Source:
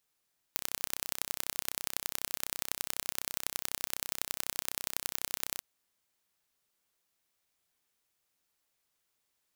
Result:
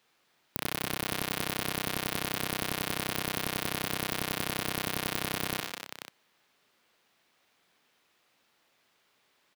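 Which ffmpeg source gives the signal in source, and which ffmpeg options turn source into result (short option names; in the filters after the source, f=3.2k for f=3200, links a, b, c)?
-f lavfi -i "aevalsrc='0.631*eq(mod(n,1378),0)*(0.5+0.5*eq(mod(n,4134),0))':d=5.06:s=44100"
-filter_complex "[0:a]aecho=1:1:69|103|213|250|490:0.355|0.211|0.2|0.133|0.188,acrossover=split=130|4400[a][b][c];[b]aeval=exprs='0.126*sin(PI/2*3.55*val(0)/0.126)':c=same[d];[a][d][c]amix=inputs=3:normalize=0"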